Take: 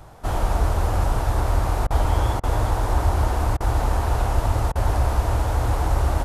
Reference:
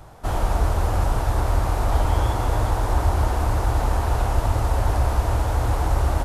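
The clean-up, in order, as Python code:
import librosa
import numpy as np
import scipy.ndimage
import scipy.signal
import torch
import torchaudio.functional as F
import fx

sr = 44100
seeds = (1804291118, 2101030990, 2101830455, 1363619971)

y = fx.fix_interpolate(x, sr, at_s=(1.87, 2.4, 3.57, 4.72), length_ms=33.0)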